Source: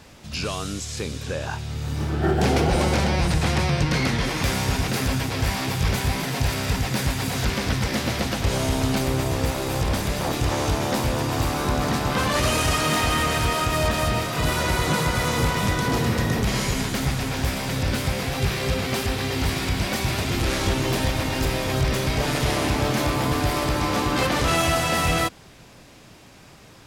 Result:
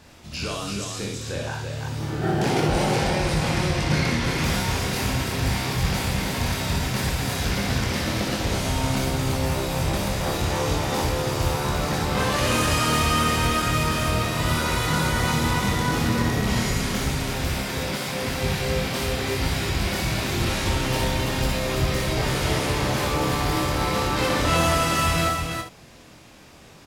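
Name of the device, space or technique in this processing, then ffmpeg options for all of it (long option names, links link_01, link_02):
slapback doubling: -filter_complex "[0:a]asplit=3[link_01][link_02][link_03];[link_02]adelay=25,volume=-5dB[link_04];[link_03]adelay=72,volume=-8dB[link_05];[link_01][link_04][link_05]amix=inputs=3:normalize=0,asettb=1/sr,asplit=3[link_06][link_07][link_08];[link_06]atrim=end=17.624[link_09];[link_07]atrim=start=17.62:end=18.23,asetpts=PTS-STARTPTS,afade=type=in:duration=0.004:curve=qsin,afade=type=out:start_time=0.606:duration=0.004:curve=qsin,highpass=190[link_10];[link_08]atrim=start=18.226[link_11];[link_09][link_10]acrossfade=duration=0.004:curve1=hsin:curve2=qsin[link_12];[link_12][link_11]acrossfade=duration=0.004:curve1=qsin:curve2=hsin,aecho=1:1:60|334:0.596|0.596,volume=-4dB"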